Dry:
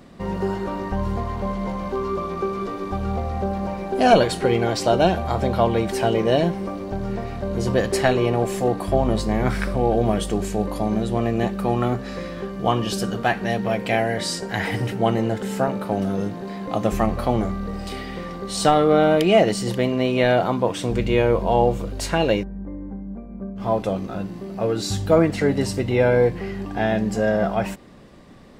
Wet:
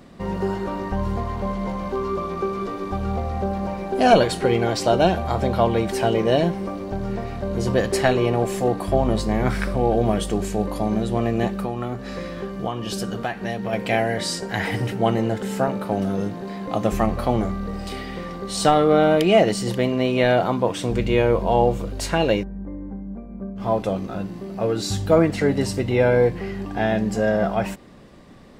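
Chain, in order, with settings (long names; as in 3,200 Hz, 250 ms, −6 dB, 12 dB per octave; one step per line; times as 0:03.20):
0:11.58–0:13.73: downward compressor 6 to 1, threshold −23 dBFS, peak gain reduction 9 dB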